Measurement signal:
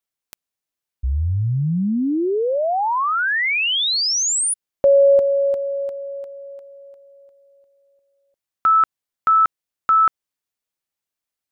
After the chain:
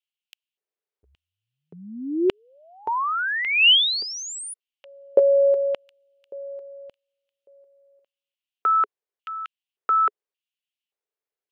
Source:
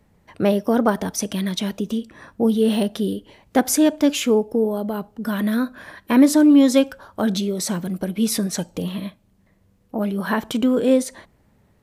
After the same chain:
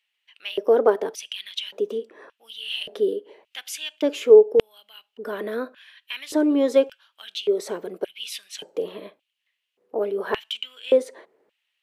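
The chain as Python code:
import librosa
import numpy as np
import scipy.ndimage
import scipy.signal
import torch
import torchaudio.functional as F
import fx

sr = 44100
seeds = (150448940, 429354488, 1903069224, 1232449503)

y = fx.bass_treble(x, sr, bass_db=-5, treble_db=-9)
y = fx.filter_lfo_highpass(y, sr, shape='square', hz=0.87, low_hz=420.0, high_hz=2900.0, q=5.3)
y = F.gain(torch.from_numpy(y), -5.5).numpy()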